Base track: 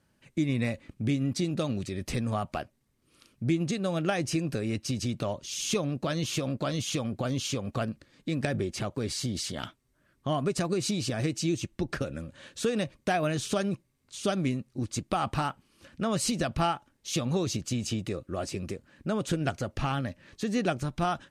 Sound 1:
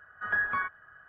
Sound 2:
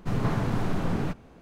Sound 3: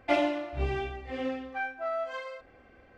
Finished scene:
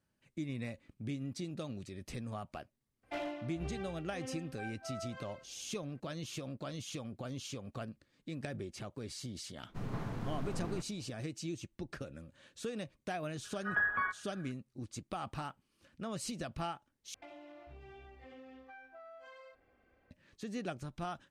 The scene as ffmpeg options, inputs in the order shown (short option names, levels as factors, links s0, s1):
-filter_complex "[3:a]asplit=2[s0][s1];[0:a]volume=0.251[s2];[s0]asoftclip=type=hard:threshold=0.0841[s3];[s1]acompressor=threshold=0.0158:ratio=6:attack=3.2:release=140:knee=1:detection=peak[s4];[s2]asplit=2[s5][s6];[s5]atrim=end=17.144[s7];[s4]atrim=end=2.97,asetpts=PTS-STARTPTS,volume=0.211[s8];[s6]atrim=start=20.106[s9];[s3]atrim=end=2.97,asetpts=PTS-STARTPTS,volume=0.237,afade=t=in:d=0.004:c=hsin,afade=t=out:st=2.966:d=0.004:c=hsin,adelay=3030[s10];[2:a]atrim=end=1.41,asetpts=PTS-STARTPTS,volume=0.224,afade=t=in:d=0.004:c=hsin,afade=t=out:st=1.406:d=0.004:c=hsin,adelay=9690[s11];[1:a]atrim=end=1.08,asetpts=PTS-STARTPTS,volume=0.668,afade=t=in:d=0.004:c=hsin,afade=t=out:st=1.076:d=0.004:c=hsin,adelay=13440[s12];[s7][s8]acrossfade=d=0.004:c1=hsin:c2=hsin[s13];[s13][s9]acrossfade=d=0.004:c1=hsin:c2=hsin[s14];[s14][s10][s11][s12]amix=inputs=4:normalize=0"